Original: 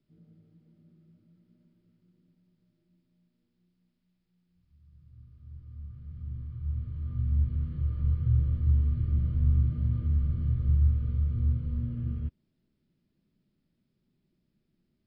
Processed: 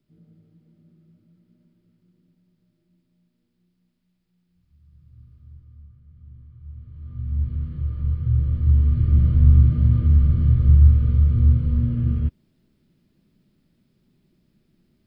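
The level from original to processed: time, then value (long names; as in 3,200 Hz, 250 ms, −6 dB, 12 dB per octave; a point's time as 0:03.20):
0:05.33 +4 dB
0:06.04 −7 dB
0:06.75 −7 dB
0:07.49 +3.5 dB
0:08.22 +3.5 dB
0:09.21 +11 dB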